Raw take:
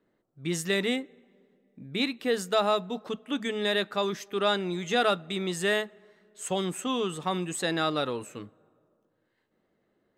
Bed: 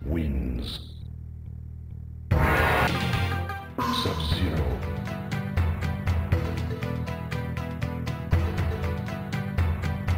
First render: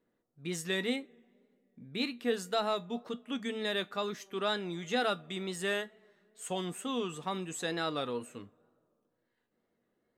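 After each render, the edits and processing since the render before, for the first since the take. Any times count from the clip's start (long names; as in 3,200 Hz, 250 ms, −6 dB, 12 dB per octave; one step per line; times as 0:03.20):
tape wow and flutter 66 cents
tuned comb filter 240 Hz, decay 0.18 s, harmonics all, mix 60%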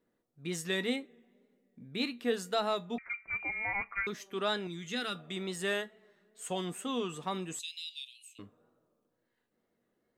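0:02.98–0:04.07: voice inversion scrambler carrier 2,600 Hz
0:04.67–0:05.15: parametric band 690 Hz −14.5 dB 1.4 octaves
0:07.59–0:08.39: Butterworth high-pass 2,500 Hz 72 dB per octave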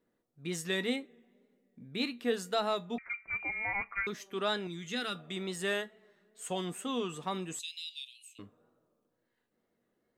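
no processing that can be heard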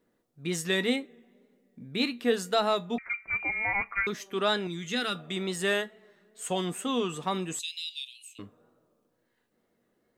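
level +5.5 dB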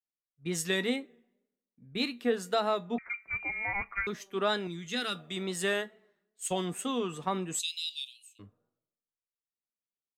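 downward compressor 2.5 to 1, threshold −30 dBFS, peak gain reduction 7.5 dB
multiband upward and downward expander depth 100%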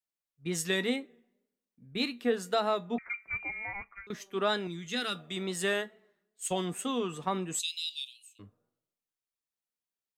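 0:03.28–0:04.10: fade out, to −21.5 dB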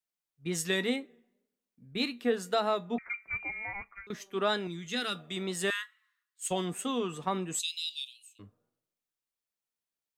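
0:05.70–0:06.43: Butterworth high-pass 1,000 Hz 96 dB per octave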